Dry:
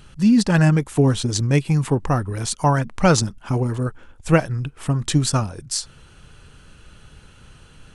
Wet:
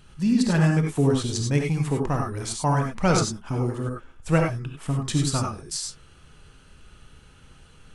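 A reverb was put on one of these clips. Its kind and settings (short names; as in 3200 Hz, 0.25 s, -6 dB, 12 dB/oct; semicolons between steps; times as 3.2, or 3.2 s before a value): non-linear reverb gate 0.12 s rising, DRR 1 dB; gain -6.5 dB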